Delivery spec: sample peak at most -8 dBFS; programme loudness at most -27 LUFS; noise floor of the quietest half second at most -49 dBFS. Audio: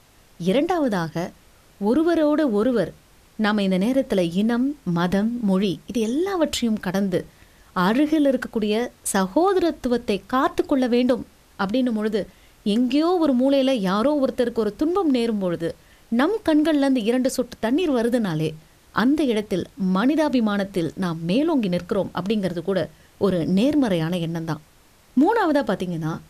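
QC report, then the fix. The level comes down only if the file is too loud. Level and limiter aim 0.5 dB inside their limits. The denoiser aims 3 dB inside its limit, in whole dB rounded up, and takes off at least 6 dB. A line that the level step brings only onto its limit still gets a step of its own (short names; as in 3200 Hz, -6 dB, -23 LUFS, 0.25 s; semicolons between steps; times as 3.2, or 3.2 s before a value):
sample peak -5.5 dBFS: fail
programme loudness -22.0 LUFS: fail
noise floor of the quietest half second -54 dBFS: OK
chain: gain -5.5 dB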